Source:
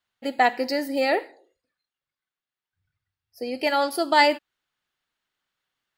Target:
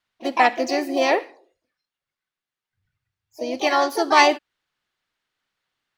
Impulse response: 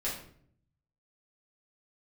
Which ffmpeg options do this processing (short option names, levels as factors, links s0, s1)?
-filter_complex "[0:a]highshelf=f=9900:g=-10.5,asplit=3[s0][s1][s2];[s1]asetrate=55563,aresample=44100,atempo=0.793701,volume=0.398[s3];[s2]asetrate=58866,aresample=44100,atempo=0.749154,volume=0.355[s4];[s0][s3][s4]amix=inputs=3:normalize=0,volume=1.26"